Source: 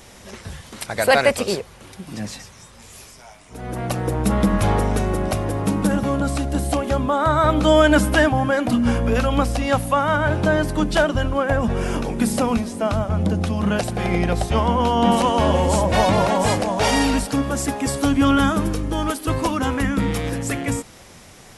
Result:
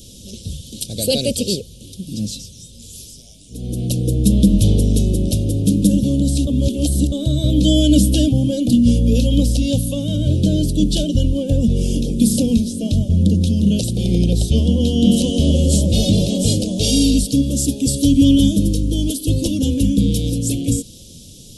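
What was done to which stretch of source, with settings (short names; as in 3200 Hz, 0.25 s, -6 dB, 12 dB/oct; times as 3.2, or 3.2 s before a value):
6.47–7.12 reverse
whole clip: elliptic band-stop 520–3300 Hz, stop band 40 dB; band shelf 500 Hz -8 dB 1.2 oct; gain +7 dB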